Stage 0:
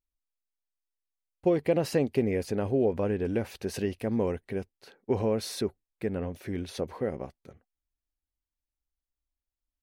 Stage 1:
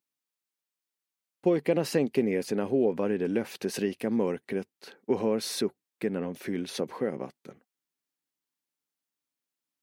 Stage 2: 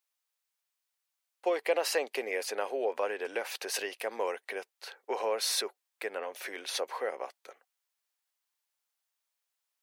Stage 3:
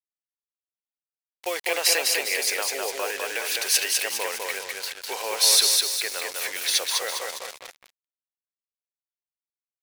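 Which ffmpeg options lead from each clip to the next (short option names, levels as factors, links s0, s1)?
-filter_complex "[0:a]highpass=f=160:w=0.5412,highpass=f=160:w=1.3066,equalizer=f=640:w=2.1:g=-4,asplit=2[s0][s1];[s1]acompressor=threshold=0.0141:ratio=6,volume=0.891[s2];[s0][s2]amix=inputs=2:normalize=0"
-af "highpass=f=580:w=0.5412,highpass=f=580:w=1.3066,volume=1.58"
-af "aecho=1:1:203|406|609|812|1015|1218:0.708|0.311|0.137|0.0603|0.0265|0.0117,acrusher=bits=6:mix=0:aa=0.5,tiltshelf=f=1500:g=-9.5,volume=1.88"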